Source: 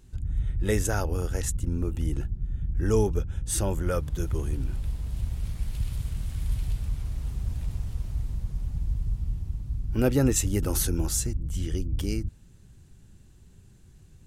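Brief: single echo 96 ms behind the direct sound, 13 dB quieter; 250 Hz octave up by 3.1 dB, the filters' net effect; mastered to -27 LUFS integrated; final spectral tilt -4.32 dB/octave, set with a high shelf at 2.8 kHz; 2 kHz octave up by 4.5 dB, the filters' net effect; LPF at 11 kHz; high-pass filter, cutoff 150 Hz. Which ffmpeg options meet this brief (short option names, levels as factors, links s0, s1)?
-af "highpass=150,lowpass=11000,equalizer=f=250:t=o:g=4.5,equalizer=f=2000:t=o:g=4.5,highshelf=f=2800:g=3.5,aecho=1:1:96:0.224,volume=1.06"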